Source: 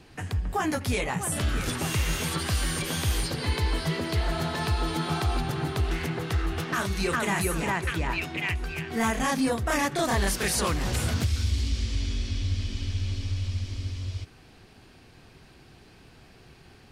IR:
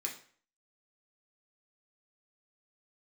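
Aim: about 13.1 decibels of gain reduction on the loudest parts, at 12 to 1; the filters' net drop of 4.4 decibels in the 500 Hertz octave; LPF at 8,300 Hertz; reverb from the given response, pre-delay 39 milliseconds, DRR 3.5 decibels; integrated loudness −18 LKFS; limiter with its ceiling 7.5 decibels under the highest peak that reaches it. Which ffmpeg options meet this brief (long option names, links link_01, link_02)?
-filter_complex "[0:a]lowpass=8300,equalizer=frequency=500:width_type=o:gain=-6,acompressor=threshold=-35dB:ratio=12,alimiter=level_in=8.5dB:limit=-24dB:level=0:latency=1,volume=-8.5dB,asplit=2[link_01][link_02];[1:a]atrim=start_sample=2205,adelay=39[link_03];[link_02][link_03]afir=irnorm=-1:irlink=0,volume=-4dB[link_04];[link_01][link_04]amix=inputs=2:normalize=0,volume=22dB"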